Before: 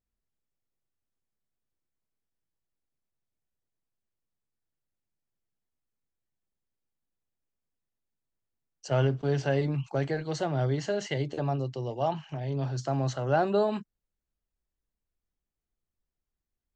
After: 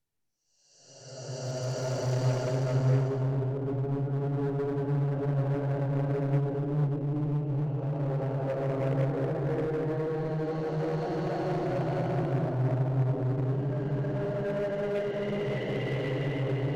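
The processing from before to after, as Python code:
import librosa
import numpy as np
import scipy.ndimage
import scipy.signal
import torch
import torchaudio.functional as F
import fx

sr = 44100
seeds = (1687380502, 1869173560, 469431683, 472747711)

p1 = fx.env_lowpass_down(x, sr, base_hz=310.0, full_db=-23.0)
p2 = fx.paulstretch(p1, sr, seeds[0], factor=6.2, window_s=0.5, from_s=8.55)
p3 = 10.0 ** (-33.0 / 20.0) * (np.abs((p2 / 10.0 ** (-33.0 / 20.0) + 3.0) % 4.0 - 2.0) - 1.0)
p4 = p2 + (p3 * librosa.db_to_amplitude(-4.0))
y = fx.peak_eq(p4, sr, hz=1200.0, db=-2.5, octaves=0.23)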